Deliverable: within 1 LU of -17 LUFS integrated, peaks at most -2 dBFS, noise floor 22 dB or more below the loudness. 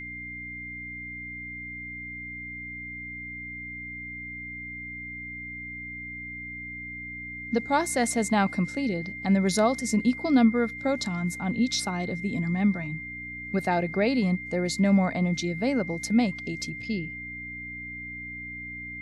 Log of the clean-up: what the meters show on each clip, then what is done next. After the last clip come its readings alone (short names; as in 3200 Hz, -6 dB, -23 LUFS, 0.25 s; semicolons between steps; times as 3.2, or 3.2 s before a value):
hum 60 Hz; harmonics up to 300 Hz; hum level -44 dBFS; steady tone 2100 Hz; tone level -36 dBFS; loudness -28.5 LUFS; peak -10.0 dBFS; loudness target -17.0 LUFS
-> de-hum 60 Hz, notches 5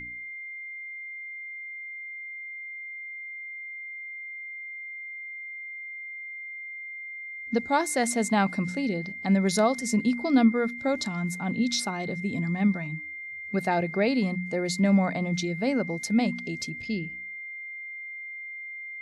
hum none; steady tone 2100 Hz; tone level -36 dBFS
-> notch 2100 Hz, Q 30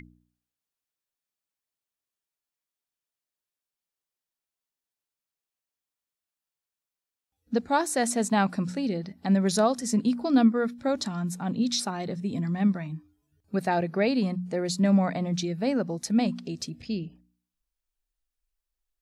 steady tone none; loudness -27.0 LUFS; peak -10.5 dBFS; loudness target -17.0 LUFS
-> gain +10 dB; limiter -2 dBFS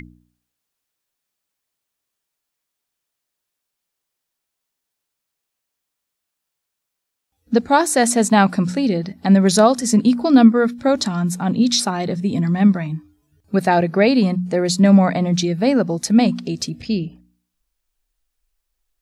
loudness -17.0 LUFS; peak -2.0 dBFS; noise floor -80 dBFS